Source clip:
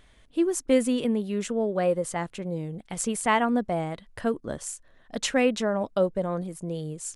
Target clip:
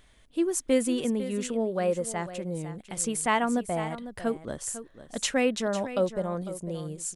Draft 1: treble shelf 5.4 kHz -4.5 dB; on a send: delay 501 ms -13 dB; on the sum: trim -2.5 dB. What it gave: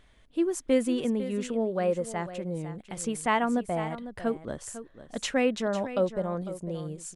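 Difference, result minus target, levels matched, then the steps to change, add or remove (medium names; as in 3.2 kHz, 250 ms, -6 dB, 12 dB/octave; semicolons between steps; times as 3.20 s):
8 kHz band -6.5 dB
change: treble shelf 5.4 kHz +5.5 dB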